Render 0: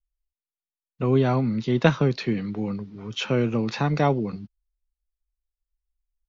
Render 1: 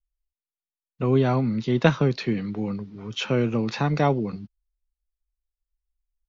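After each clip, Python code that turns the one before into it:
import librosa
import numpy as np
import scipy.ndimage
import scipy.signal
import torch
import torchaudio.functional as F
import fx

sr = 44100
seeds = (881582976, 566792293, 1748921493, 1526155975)

y = x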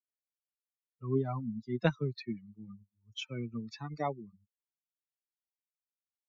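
y = fx.bin_expand(x, sr, power=3.0)
y = y * 10.0 ** (-7.5 / 20.0)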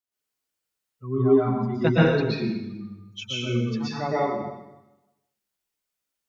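y = fx.rev_plate(x, sr, seeds[0], rt60_s=1.0, hf_ratio=0.95, predelay_ms=105, drr_db=-9.0)
y = y * 10.0 ** (3.0 / 20.0)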